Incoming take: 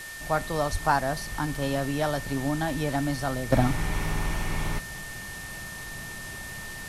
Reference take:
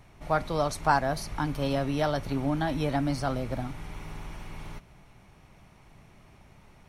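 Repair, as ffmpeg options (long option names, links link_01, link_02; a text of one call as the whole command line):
ffmpeg -i in.wav -filter_complex "[0:a]bandreject=frequency=1800:width=30,asplit=3[link_01][link_02][link_03];[link_01]afade=type=out:start_time=0.71:duration=0.02[link_04];[link_02]highpass=frequency=140:width=0.5412,highpass=frequency=140:width=1.3066,afade=type=in:start_time=0.71:duration=0.02,afade=type=out:start_time=0.83:duration=0.02[link_05];[link_03]afade=type=in:start_time=0.83:duration=0.02[link_06];[link_04][link_05][link_06]amix=inputs=3:normalize=0,afwtdn=0.0079,asetnsamples=nb_out_samples=441:pad=0,asendcmd='3.52 volume volume -11.5dB',volume=0dB" out.wav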